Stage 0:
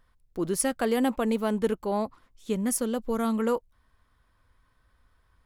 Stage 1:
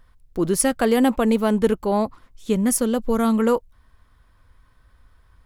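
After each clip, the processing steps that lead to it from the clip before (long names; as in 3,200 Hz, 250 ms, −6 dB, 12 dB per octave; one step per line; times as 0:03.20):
low-shelf EQ 130 Hz +5.5 dB
level +6.5 dB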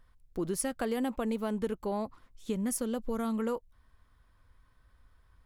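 downward compressor 3 to 1, threshold −22 dBFS, peak gain reduction 7.5 dB
level −8 dB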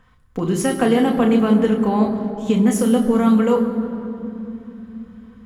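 convolution reverb RT60 3.2 s, pre-delay 3 ms, DRR 1.5 dB
level +5.5 dB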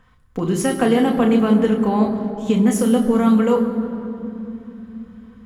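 no processing that can be heard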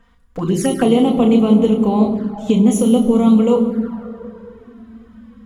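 flanger swept by the level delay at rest 4.4 ms, full sweep at −15 dBFS
level +3.5 dB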